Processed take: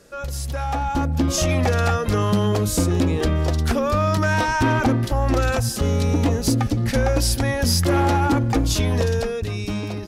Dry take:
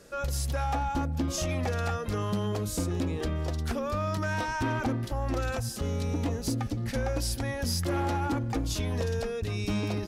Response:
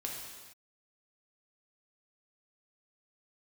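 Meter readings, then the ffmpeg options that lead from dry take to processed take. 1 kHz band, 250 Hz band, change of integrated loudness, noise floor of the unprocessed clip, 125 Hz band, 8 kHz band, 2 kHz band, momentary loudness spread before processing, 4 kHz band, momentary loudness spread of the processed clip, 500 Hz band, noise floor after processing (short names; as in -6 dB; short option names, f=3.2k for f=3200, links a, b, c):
+9.5 dB, +10.0 dB, +10.0 dB, -35 dBFS, +10.0 dB, +10.0 dB, +10.0 dB, 3 LU, +10.0 dB, 7 LU, +10.0 dB, -28 dBFS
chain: -af "dynaudnorm=f=210:g=9:m=8.5dB,volume=2dB"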